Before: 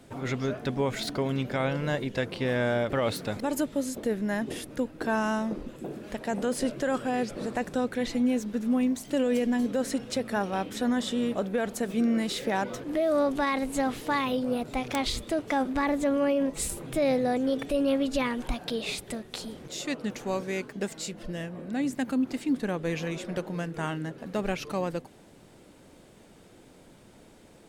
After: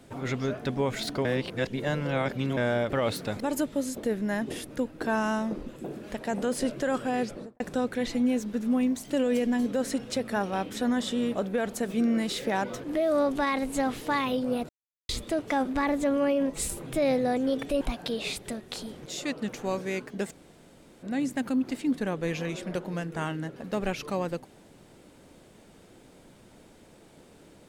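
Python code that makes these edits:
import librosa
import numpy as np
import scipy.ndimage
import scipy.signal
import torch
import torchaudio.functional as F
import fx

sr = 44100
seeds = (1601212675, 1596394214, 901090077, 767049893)

y = fx.studio_fade_out(x, sr, start_s=7.24, length_s=0.36)
y = fx.edit(y, sr, fx.reverse_span(start_s=1.25, length_s=1.32),
    fx.silence(start_s=14.69, length_s=0.4),
    fx.cut(start_s=17.81, length_s=0.62),
    fx.room_tone_fill(start_s=20.93, length_s=0.72, crossfade_s=0.02), tone=tone)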